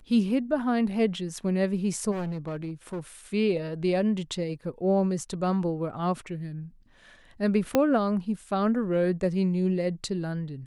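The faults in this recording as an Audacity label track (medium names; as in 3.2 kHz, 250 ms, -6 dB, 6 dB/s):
2.110000	3.000000	clipped -28.5 dBFS
7.750000	7.750000	pop -8 dBFS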